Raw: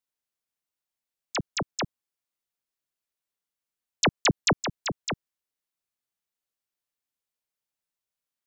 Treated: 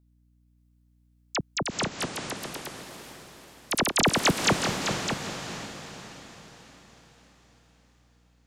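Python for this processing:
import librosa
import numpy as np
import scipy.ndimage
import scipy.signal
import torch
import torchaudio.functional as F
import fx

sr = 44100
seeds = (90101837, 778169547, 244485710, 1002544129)

y = fx.echo_pitch(x, sr, ms=586, semitones=4, count=3, db_per_echo=-3.0)
y = fx.echo_diffused(y, sr, ms=451, feedback_pct=50, wet_db=-7.0)
y = fx.add_hum(y, sr, base_hz=60, snr_db=31)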